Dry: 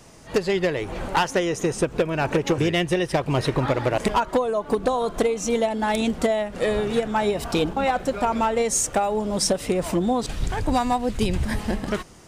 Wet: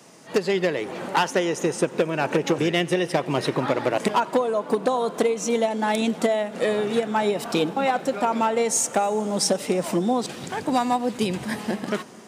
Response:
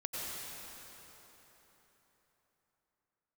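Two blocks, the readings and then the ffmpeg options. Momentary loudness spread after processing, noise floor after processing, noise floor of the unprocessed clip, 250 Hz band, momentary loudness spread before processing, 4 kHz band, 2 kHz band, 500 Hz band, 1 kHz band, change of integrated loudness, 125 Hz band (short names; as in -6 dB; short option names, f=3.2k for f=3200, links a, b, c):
4 LU, -39 dBFS, -41 dBFS, -0.5 dB, 4 LU, 0.0 dB, 0.0 dB, 0.0 dB, 0.0 dB, 0.0 dB, -4.5 dB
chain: -filter_complex "[0:a]highpass=f=160:w=0.5412,highpass=f=160:w=1.3066,asplit=2[a][b];[1:a]atrim=start_sample=2205,adelay=93[c];[b][c]afir=irnorm=-1:irlink=0,volume=-21.5dB[d];[a][d]amix=inputs=2:normalize=0"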